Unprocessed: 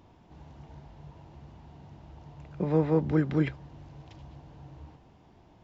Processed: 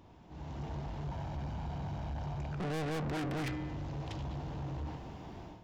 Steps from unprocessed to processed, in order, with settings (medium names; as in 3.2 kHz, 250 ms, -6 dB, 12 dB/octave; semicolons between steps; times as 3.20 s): 1.06–2.54 s: comb 1.3 ms, depth 59%; level rider gain up to 13 dB; feedback comb 61 Hz, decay 1.1 s, harmonics odd, mix 50%; saturation -39 dBFS, distortion 2 dB; trim +4.5 dB